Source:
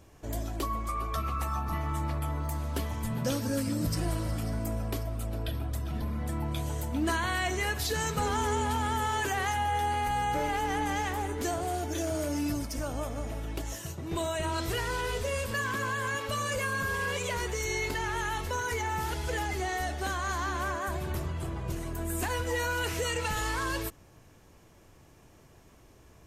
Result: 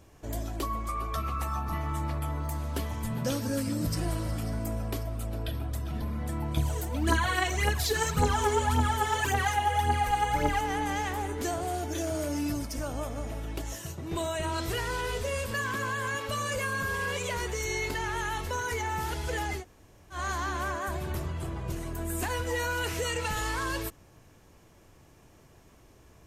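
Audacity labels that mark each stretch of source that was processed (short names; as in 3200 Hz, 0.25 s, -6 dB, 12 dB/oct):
6.570000	10.610000	phaser 1.8 Hz, delay 2.9 ms, feedback 64%
19.600000	20.150000	room tone, crossfade 0.10 s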